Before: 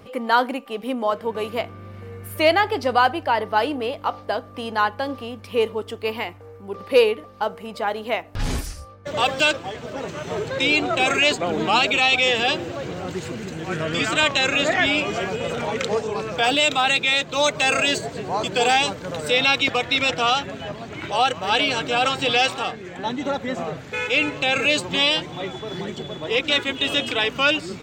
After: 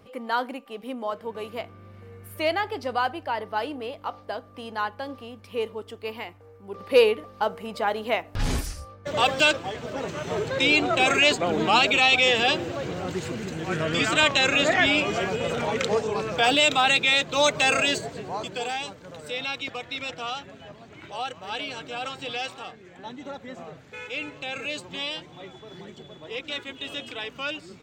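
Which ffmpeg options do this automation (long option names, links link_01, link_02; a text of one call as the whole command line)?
ffmpeg -i in.wav -af "volume=-1dB,afade=type=in:start_time=6.6:duration=0.46:silence=0.446684,afade=type=out:start_time=17.57:duration=1.12:silence=0.266073" out.wav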